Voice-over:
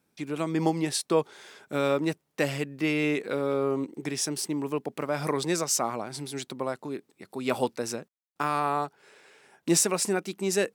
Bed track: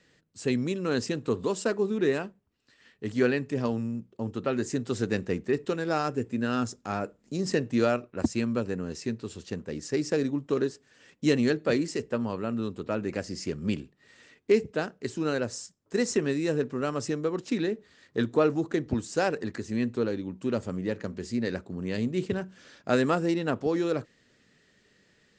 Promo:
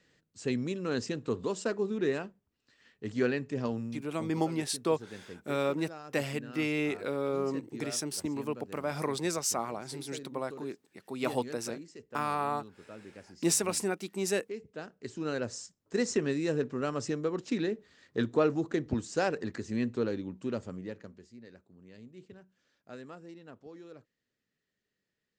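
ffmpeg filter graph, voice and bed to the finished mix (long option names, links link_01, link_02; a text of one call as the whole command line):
ffmpeg -i stem1.wav -i stem2.wav -filter_complex "[0:a]adelay=3750,volume=-4.5dB[link_01];[1:a]volume=10.5dB,afade=type=out:start_time=3.72:duration=0.75:silence=0.211349,afade=type=in:start_time=14.6:duration=1.01:silence=0.177828,afade=type=out:start_time=20.18:duration=1.12:silence=0.112202[link_02];[link_01][link_02]amix=inputs=2:normalize=0" out.wav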